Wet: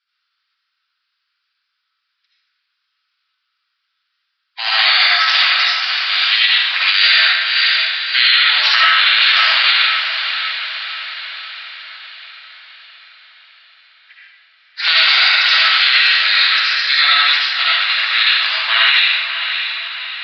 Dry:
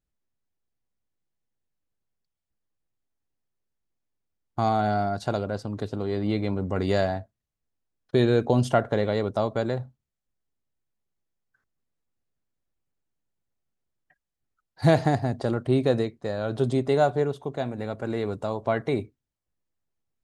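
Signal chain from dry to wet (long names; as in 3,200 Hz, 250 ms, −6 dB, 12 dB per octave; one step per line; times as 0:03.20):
Butterworth high-pass 1,700 Hz 36 dB per octave
gate on every frequency bin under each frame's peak −10 dB weak
0:16.38–0:17.04: phaser with its sweep stopped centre 2,900 Hz, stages 6
feedback delay with all-pass diffusion 609 ms, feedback 54%, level −9.5 dB
comb and all-pass reverb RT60 1.2 s, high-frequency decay 0.75×, pre-delay 35 ms, DRR −7 dB
downsampling to 11,025 Hz
boost into a limiter +34 dB
level −1 dB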